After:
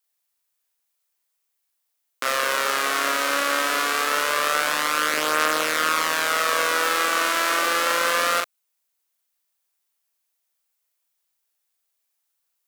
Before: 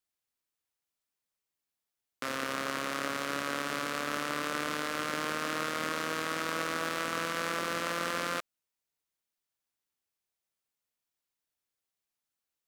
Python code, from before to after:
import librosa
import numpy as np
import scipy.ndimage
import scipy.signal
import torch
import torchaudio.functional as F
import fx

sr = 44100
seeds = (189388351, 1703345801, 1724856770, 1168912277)

y = scipy.signal.sosfilt(scipy.signal.butter(2, 510.0, 'highpass', fs=sr, output='sos'), x)
y = fx.high_shelf(y, sr, hz=8300.0, db=8.0)
y = fx.leveller(y, sr, passes=1)
y = fx.doubler(y, sr, ms=39.0, db=-2.5)
y = y * 10.0 ** (7.0 / 20.0)